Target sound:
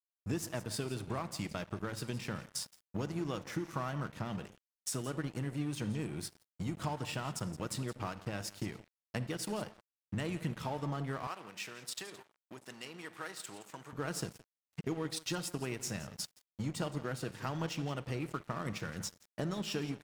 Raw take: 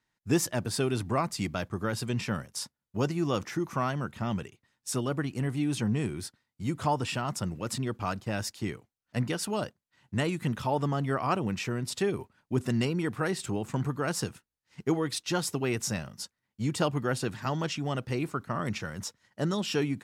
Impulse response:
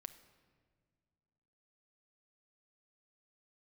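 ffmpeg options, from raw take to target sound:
-filter_complex "[0:a]acompressor=threshold=-40dB:ratio=5,aecho=1:1:169:0.188[a];[1:a]atrim=start_sample=2205,atrim=end_sample=6174[b];[a][b]afir=irnorm=-1:irlink=0,aeval=exprs='sgn(val(0))*max(abs(val(0))-0.00119,0)':c=same,asettb=1/sr,asplit=3[c][d][e];[c]atrim=end=11.274[f];[d]atrim=start=11.27:end=13.93,asetpts=PTS-STARTPTS,afade=t=in:d=0.004:c=qsin,afade=t=out:st=2.656:d=0.004:c=qsin,highpass=f=1.2k:p=1[g];[e]atrim=start=13.926[h];[f][g]acrossfade=d=0.004:c1=hsin:c2=qsin[i];[i][h]acrossfade=d=0.004:c1=qsin:c2=hsin,volume=11dB"

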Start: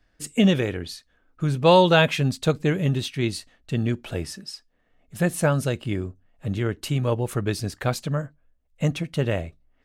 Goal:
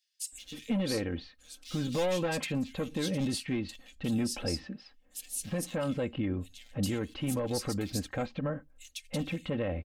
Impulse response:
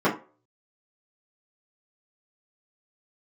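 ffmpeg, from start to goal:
-filter_complex "[0:a]volume=17.5dB,asoftclip=hard,volume=-17.5dB,aecho=1:1:3.8:0.63,alimiter=limit=-24dB:level=0:latency=1:release=99,equalizer=f=1.4k:w=1.7:g=-4,acrossover=split=3100[a][b];[a]adelay=320[c];[c][b]amix=inputs=2:normalize=0"

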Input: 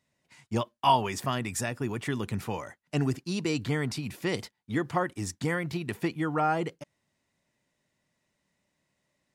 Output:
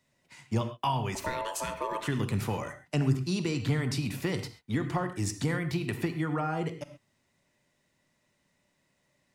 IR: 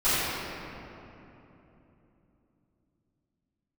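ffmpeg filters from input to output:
-filter_complex "[0:a]acrossover=split=170[a][b];[b]acompressor=threshold=-34dB:ratio=4[c];[a][c]amix=inputs=2:normalize=0,asettb=1/sr,asplit=3[d][e][f];[d]atrim=end=1.154[g];[e]atrim=start=1.15:end=2.07,asetpts=PTS-STARTPTS,afade=t=in:d=0.004:c=qsin,afade=t=out:st=0.916:d=0.004:c=qsin,aeval=exprs='val(0)*sin(2*PI*770*n/s)':c=same[h];[f]atrim=start=2.066[i];[g][h]acrossfade=d=0.004:c1=hsin:c2=qsin[j];[j][i]acrossfade=d=0.004:c1=qsin:c2=hsin,asplit=2[k][l];[1:a]atrim=start_sample=2205,atrim=end_sample=6174[m];[l][m]afir=irnorm=-1:irlink=0,volume=-20.5dB[n];[k][n]amix=inputs=2:normalize=0,volume=3dB"

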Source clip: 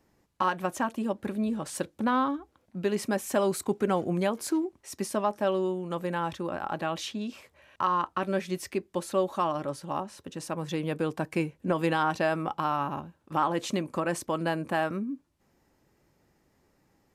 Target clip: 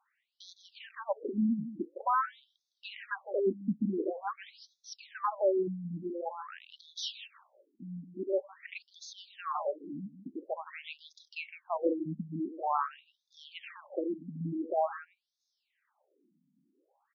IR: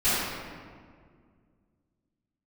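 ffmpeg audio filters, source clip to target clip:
-filter_complex "[0:a]asplit=2[a][b];[b]aecho=0:1:160:0.266[c];[a][c]amix=inputs=2:normalize=0,afftfilt=real='re*between(b*sr/1024,200*pow(4800/200,0.5+0.5*sin(2*PI*0.47*pts/sr))/1.41,200*pow(4800/200,0.5+0.5*sin(2*PI*0.47*pts/sr))*1.41)':imag='im*between(b*sr/1024,200*pow(4800/200,0.5+0.5*sin(2*PI*0.47*pts/sr))/1.41,200*pow(4800/200,0.5+0.5*sin(2*PI*0.47*pts/sr))*1.41)':win_size=1024:overlap=0.75,volume=1dB"

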